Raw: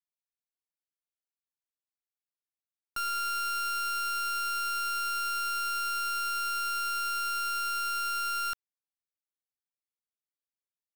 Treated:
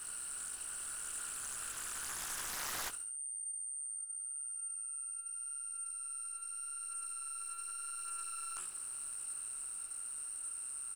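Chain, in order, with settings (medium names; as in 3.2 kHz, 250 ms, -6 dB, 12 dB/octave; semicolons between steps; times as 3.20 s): spectral levelling over time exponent 0.4; Doppler pass-by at 3.29 s, 7 m/s, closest 3.5 m; band-stop 3.4 kHz, Q 8.1; de-hum 183.4 Hz, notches 27; compressor with a negative ratio -59 dBFS, ratio -0.5; whistle 8.8 kHz -49 dBFS; chorus 0.86 Hz, delay 16 ms, depth 6.1 ms; on a send: feedback delay 70 ms, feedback 42%, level -13.5 dB; on the sum: loudspeaker Doppler distortion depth 0.98 ms; trim +10.5 dB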